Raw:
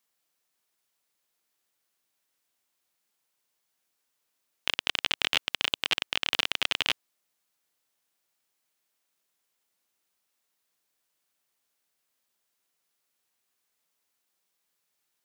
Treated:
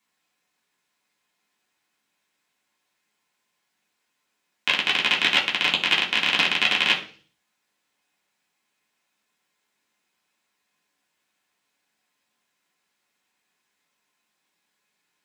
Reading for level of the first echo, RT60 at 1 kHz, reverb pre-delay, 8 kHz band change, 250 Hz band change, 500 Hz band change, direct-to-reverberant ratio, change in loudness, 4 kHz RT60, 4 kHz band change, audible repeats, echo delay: none, 0.40 s, 3 ms, +2.0 dB, +10.0 dB, +6.0 dB, -3.5 dB, +7.5 dB, 0.55 s, +6.0 dB, none, none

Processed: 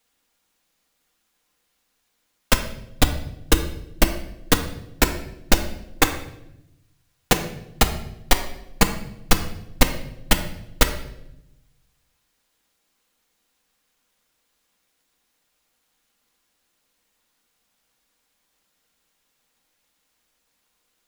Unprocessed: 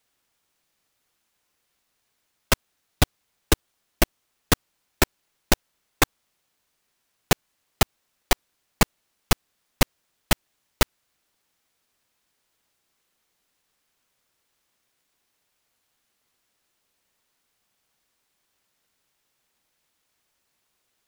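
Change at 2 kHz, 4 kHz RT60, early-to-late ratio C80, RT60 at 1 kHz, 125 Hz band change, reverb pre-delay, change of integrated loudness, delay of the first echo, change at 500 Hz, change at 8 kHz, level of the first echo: +2.5 dB, 0.70 s, 12.5 dB, 0.70 s, +2.0 dB, 4 ms, +2.0 dB, none, +3.0 dB, +3.0 dB, none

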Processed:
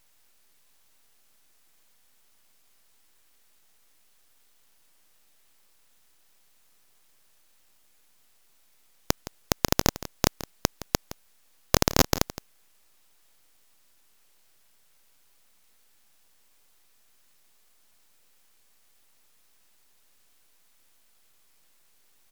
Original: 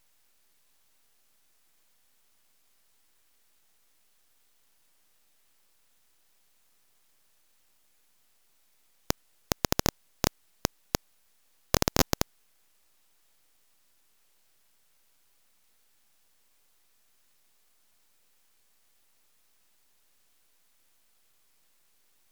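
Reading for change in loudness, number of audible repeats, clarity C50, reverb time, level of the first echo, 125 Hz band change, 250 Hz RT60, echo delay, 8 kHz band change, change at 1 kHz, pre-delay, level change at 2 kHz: +3.5 dB, 1, none, none, -15.5 dB, +3.5 dB, none, 0.166 s, +3.5 dB, +3.5 dB, none, +3.5 dB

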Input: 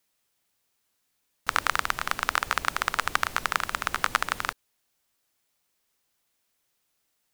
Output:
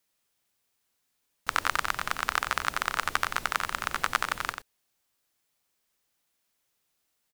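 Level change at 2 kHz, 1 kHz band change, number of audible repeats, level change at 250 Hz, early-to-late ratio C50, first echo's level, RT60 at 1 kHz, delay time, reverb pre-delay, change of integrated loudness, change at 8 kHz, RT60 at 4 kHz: -2.0 dB, -2.0 dB, 1, -2.0 dB, none, -7.5 dB, none, 91 ms, none, -2.0 dB, -2.0 dB, none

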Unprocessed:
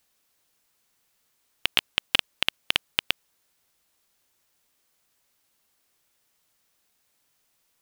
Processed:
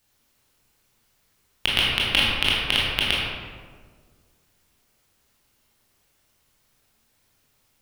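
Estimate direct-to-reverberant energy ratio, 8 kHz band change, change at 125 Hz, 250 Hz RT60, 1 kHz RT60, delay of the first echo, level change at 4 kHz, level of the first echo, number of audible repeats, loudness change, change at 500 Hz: -6.0 dB, +3.0 dB, +15.0 dB, 2.0 s, 1.5 s, none, +5.0 dB, none, none, +5.0 dB, +7.5 dB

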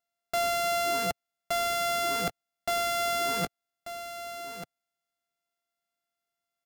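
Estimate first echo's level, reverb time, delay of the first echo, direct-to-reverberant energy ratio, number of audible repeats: -11.5 dB, none, 1.188 s, none, 1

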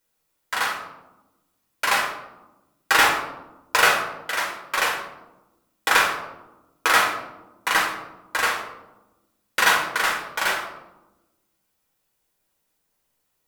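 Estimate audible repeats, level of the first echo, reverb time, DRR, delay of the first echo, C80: none, none, 1.0 s, -2.0 dB, none, 8.5 dB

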